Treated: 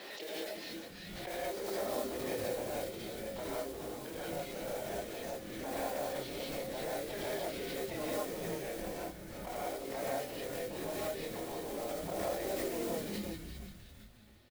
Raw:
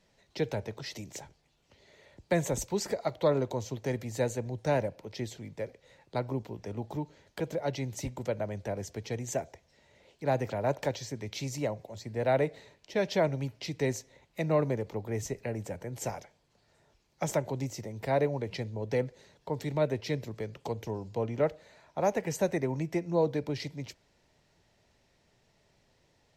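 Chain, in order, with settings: notch 920 Hz, Q 6; time stretch by phase-locked vocoder 0.55×; notches 60/120/180/240/300/360/420/480/540 Hz; compressor 2.5:1, threshold -42 dBFS, peak gain reduction 13 dB; chorus voices 4, 0.15 Hz, delay 28 ms, depth 2.5 ms; Chebyshev band-pass 300–4100 Hz, order 3; modulation noise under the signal 11 dB; harmoniser +5 st -11 dB; on a send: frequency-shifting echo 0.348 s, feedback 46%, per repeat -140 Hz, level -7 dB; on the sum: non-linear reverb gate 0.22 s rising, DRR -6.5 dB; backwards sustainer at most 27 dB/s

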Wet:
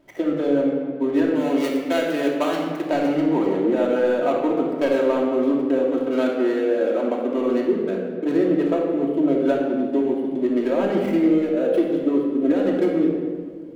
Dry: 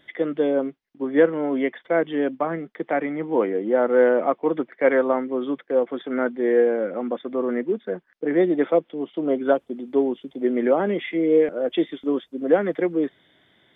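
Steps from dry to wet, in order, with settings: median filter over 25 samples; 1.35–2.84 tilt +3 dB/oct; 6.02–7.23 HPF 260 Hz 24 dB/oct; compressor, threshold -23 dBFS, peak gain reduction 11.5 dB; shoebox room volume 2300 m³, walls mixed, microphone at 2.8 m; gain +2.5 dB

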